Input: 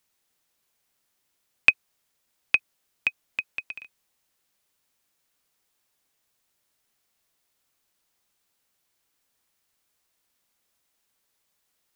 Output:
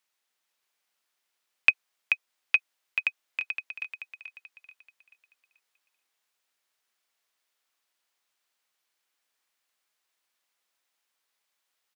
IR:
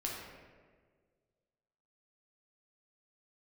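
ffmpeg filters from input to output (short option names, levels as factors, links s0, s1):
-af "highpass=f=1100:p=1,highshelf=f=5300:g=-9.5,aecho=1:1:434|868|1302|1736|2170:0.501|0.19|0.0724|0.0275|0.0105"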